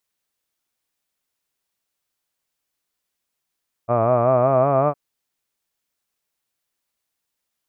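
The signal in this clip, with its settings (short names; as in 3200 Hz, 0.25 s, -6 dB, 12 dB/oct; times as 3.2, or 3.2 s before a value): formant-synthesis vowel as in hud, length 1.06 s, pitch 114 Hz, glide +4 st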